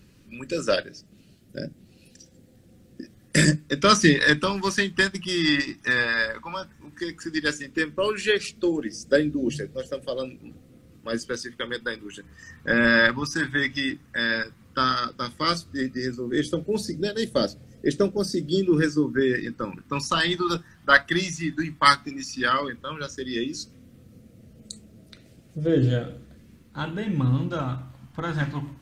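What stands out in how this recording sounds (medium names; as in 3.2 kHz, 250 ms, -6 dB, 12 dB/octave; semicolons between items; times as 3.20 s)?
phasing stages 2, 0.13 Hz, lowest notch 480–1000 Hz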